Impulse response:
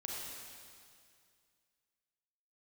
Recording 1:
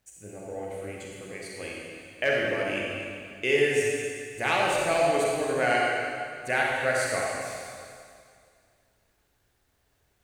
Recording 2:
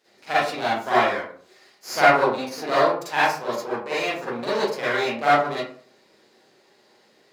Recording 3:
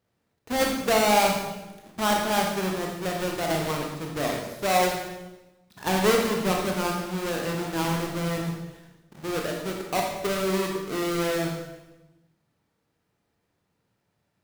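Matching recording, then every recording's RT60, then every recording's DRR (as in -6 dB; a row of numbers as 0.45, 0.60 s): 1; 2.2, 0.50, 1.1 s; -3.5, -11.0, 0.0 dB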